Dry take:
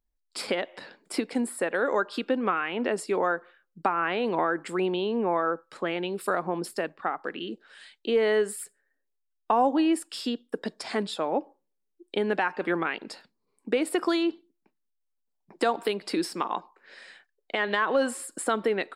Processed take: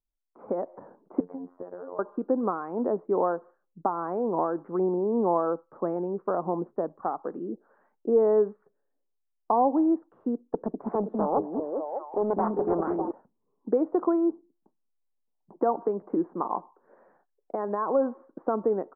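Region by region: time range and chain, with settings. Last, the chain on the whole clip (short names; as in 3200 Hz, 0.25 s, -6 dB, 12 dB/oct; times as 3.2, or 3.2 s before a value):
1.2–1.99 robotiser 89.2 Hz + compressor 16:1, threshold -34 dBFS
10.42–13.11 delay with a stepping band-pass 0.2 s, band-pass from 250 Hz, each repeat 0.7 oct, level 0 dB + Doppler distortion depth 0.33 ms
whole clip: AGC gain up to 11.5 dB; steep low-pass 1100 Hz 36 dB/oct; gain -8.5 dB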